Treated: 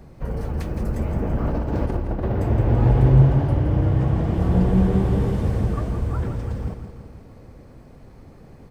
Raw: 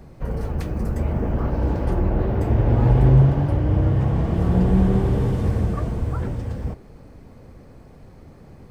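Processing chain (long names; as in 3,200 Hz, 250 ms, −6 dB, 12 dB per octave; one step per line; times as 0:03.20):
0:01.45–0:02.32: compressor whose output falls as the input rises −22 dBFS, ratio −0.5
repeating echo 167 ms, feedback 56%, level −9 dB
level −1 dB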